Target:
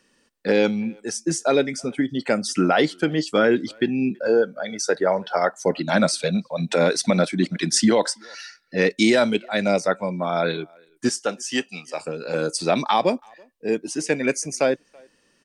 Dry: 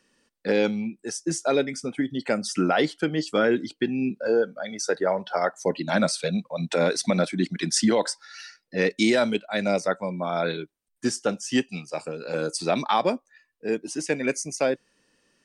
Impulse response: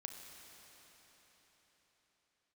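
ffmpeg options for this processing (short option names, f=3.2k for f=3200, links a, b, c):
-filter_complex "[0:a]asettb=1/sr,asplit=3[a][b][c];[a]atrim=end=11.094[d];[b]atrim=start=11.09:end=12,asetpts=PTS-STARTPTS,afade=t=in:d=0.004:c=qsin,afade=t=out:st=0.906:d=0.004:c=qsin,highpass=f=530:p=1[e];[c]atrim=start=11.996[f];[d][e]acrossfade=d=0.004:c1=hsin:c2=qsin[g];[g][f]acrossfade=d=0.004:c1=qsin:c2=hsin,asettb=1/sr,asplit=3[h][i][j];[h]atrim=end=12.914[k];[i]atrim=start=12.91:end=13.75,asetpts=PTS-STARTPTS,afade=t=in:d=0.004:c=qsin,afade=t=out:st=0.836:d=0.004:c=qsin,equalizer=f=1.4k:w=3.5:g=-8[l];[j]atrim=start=13.746[m];[k][l]acrossfade=d=0.004:c1=hsin:c2=qsin[n];[n][m]acrossfade=d=0.004:c1=qsin:c2=hsin,asplit=2[o][p];[p]adelay=330,highpass=300,lowpass=3.4k,asoftclip=type=hard:threshold=-16.5dB,volume=-28dB[q];[o][q]amix=inputs=2:normalize=0,volume=3.5dB"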